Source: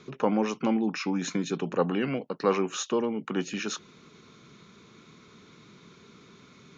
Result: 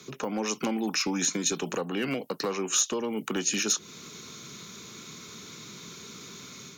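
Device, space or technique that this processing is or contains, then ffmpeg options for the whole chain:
FM broadcast chain: -filter_complex "[0:a]highpass=frequency=55:width=0.5412,highpass=frequency=55:width=1.3066,dynaudnorm=framelen=230:gausssize=3:maxgain=6dB,acrossover=split=210|650[link_01][link_02][link_03];[link_01]acompressor=threshold=-41dB:ratio=4[link_04];[link_02]acompressor=threshold=-27dB:ratio=4[link_05];[link_03]acompressor=threshold=-33dB:ratio=4[link_06];[link_04][link_05][link_06]amix=inputs=3:normalize=0,aemphasis=mode=production:type=50fm,alimiter=limit=-19dB:level=0:latency=1:release=336,asoftclip=type=hard:threshold=-21.5dB,lowpass=frequency=15000:width=0.5412,lowpass=frequency=15000:width=1.3066,aemphasis=mode=production:type=50fm"

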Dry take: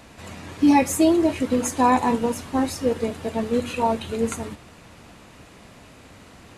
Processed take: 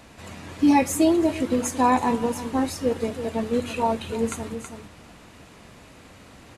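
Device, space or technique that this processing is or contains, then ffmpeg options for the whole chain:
ducked delay: -filter_complex "[0:a]asplit=3[link_01][link_02][link_03];[link_02]adelay=324,volume=-7dB[link_04];[link_03]apad=whole_len=304292[link_05];[link_04][link_05]sidechaincompress=threshold=-34dB:ratio=8:attack=16:release=161[link_06];[link_01][link_06]amix=inputs=2:normalize=0,volume=-1.5dB"

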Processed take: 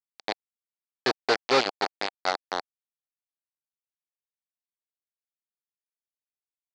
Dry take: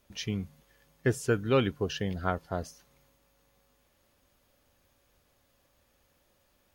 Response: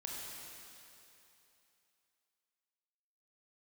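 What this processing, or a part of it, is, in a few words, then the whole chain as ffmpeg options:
hand-held game console: -af "acrusher=bits=3:mix=0:aa=0.000001,highpass=400,equalizer=frequency=770:width_type=q:width=4:gain=5,equalizer=frequency=3000:width_type=q:width=4:gain=-4,equalizer=frequency=4400:width_type=q:width=4:gain=9,lowpass=frequency=5300:width=0.5412,lowpass=frequency=5300:width=1.3066,volume=3dB"

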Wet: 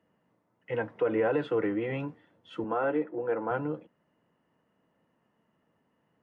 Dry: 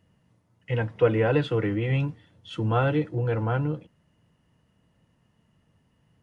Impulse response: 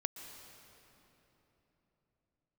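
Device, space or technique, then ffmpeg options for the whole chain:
DJ mixer with the lows and highs turned down: -filter_complex "[0:a]acrossover=split=220 2100:gain=0.0891 1 0.2[link_01][link_02][link_03];[link_01][link_02][link_03]amix=inputs=3:normalize=0,alimiter=limit=-18.5dB:level=0:latency=1:release=59,asettb=1/sr,asplit=3[link_04][link_05][link_06];[link_04]atrim=end=2.644[link_07];[link_05]atrim=start=2.64:end=3.51,asetpts=PTS-STARTPTS,afade=type=in:duration=0.004:curve=qsin,afade=type=out:start_time=0.866:duration=0.004:curve=qsin,acrossover=split=190 2900:gain=0.178 1 0.0708[link_08][link_09][link_10];[link_08][link_09][link_10]amix=inputs=3:normalize=0[link_11];[link_06]atrim=start=3.506[link_12];[link_07][link_11]acrossfade=duration=0.004:curve1=hsin:curve2=qsin[link_13];[link_13][link_12]acrossfade=duration=0.004:curve1=qsin:curve2=hsin"

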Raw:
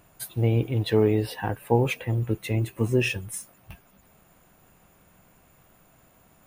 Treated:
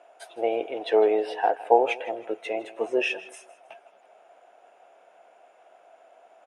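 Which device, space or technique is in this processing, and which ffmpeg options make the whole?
phone speaker on a table: -af "highpass=frequency=460:width=0.5412,highpass=frequency=460:width=1.3066,equalizer=frequency=690:width_type=q:width=4:gain=10,equalizer=frequency=1100:width_type=q:width=4:gain=-8,equalizer=frequency=1900:width_type=q:width=4:gain=-5,equalizer=frequency=4300:width_type=q:width=4:gain=-8,equalizer=frequency=7200:width_type=q:width=4:gain=-5,lowpass=frequency=8800:width=0.5412,lowpass=frequency=8800:width=1.3066,aemphasis=mode=reproduction:type=75fm,aecho=1:1:159|318|477:0.126|0.0403|0.0129,volume=5dB"

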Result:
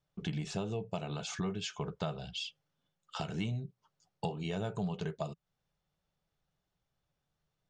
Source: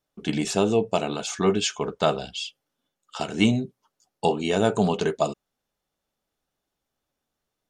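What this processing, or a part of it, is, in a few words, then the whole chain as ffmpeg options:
jukebox: -af "lowpass=5800,lowshelf=frequency=200:width_type=q:width=3:gain=6,acompressor=threshold=-32dB:ratio=4,volume=-3.5dB"

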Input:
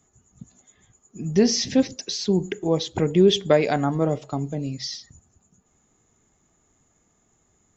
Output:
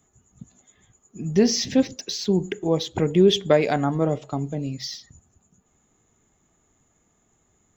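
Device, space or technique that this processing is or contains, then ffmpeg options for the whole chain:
exciter from parts: -filter_complex "[0:a]asplit=2[link_01][link_02];[link_02]highpass=3300,asoftclip=type=tanh:threshold=-37dB,highpass=frequency=3700:width=0.5412,highpass=frequency=3700:width=1.3066,volume=-7dB[link_03];[link_01][link_03]amix=inputs=2:normalize=0"

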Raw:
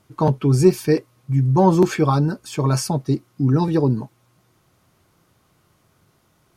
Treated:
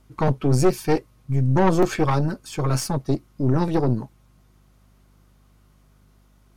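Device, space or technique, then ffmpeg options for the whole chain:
valve amplifier with mains hum: -af "aeval=exprs='(tanh(5.62*val(0)+0.8)-tanh(0.8))/5.62':channel_layout=same,aeval=exprs='val(0)+0.00126*(sin(2*PI*50*n/s)+sin(2*PI*2*50*n/s)/2+sin(2*PI*3*50*n/s)/3+sin(2*PI*4*50*n/s)/4+sin(2*PI*5*50*n/s)/5)':channel_layout=same,volume=2.5dB"

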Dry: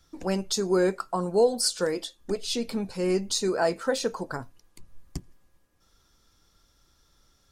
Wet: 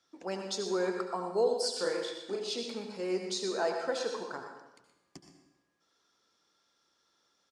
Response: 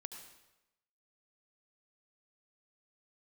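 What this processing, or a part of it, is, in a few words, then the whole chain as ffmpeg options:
supermarket ceiling speaker: -filter_complex "[0:a]asettb=1/sr,asplit=3[link_01][link_02][link_03];[link_01]atrim=end=1.714[link_04];[link_02]atrim=start=1.71:end=2.54,asetpts=PTS-STARTPTS,afade=type=in:duration=0.004:curve=qsin,afade=type=out:start_time=0.826:duration=0.004:curve=qsin,asplit=2[link_05][link_06];[link_06]adelay=37,volume=-2dB[link_07];[link_05][link_07]amix=inputs=2:normalize=0,atrim=end_sample=36603[link_08];[link_03]atrim=start=2.536[link_09];[link_04][link_08]acrossfade=duration=0.004:curve1=hsin:curve2=qsin[link_10];[link_10][link_09]acrossfade=duration=0.004:curve1=qsin:curve2=hsin,highpass=310,lowpass=6300[link_11];[1:a]atrim=start_sample=2205[link_12];[link_11][link_12]afir=irnorm=-1:irlink=0,asplit=2[link_13][link_14];[link_14]adelay=122.4,volume=-10dB,highshelf=frequency=4000:gain=-2.76[link_15];[link_13][link_15]amix=inputs=2:normalize=0,volume=-1.5dB"

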